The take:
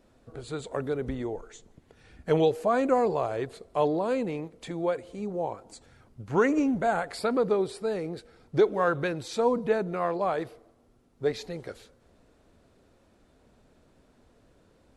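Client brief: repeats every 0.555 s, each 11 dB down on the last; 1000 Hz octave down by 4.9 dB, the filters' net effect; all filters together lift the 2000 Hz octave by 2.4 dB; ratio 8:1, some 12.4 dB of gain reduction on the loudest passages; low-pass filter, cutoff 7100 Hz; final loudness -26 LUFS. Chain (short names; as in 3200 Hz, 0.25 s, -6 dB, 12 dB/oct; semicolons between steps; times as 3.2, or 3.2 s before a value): LPF 7100 Hz; bell 1000 Hz -9 dB; bell 2000 Hz +7 dB; compressor 8:1, threshold -32 dBFS; feedback echo 0.555 s, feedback 28%, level -11 dB; gain +11.5 dB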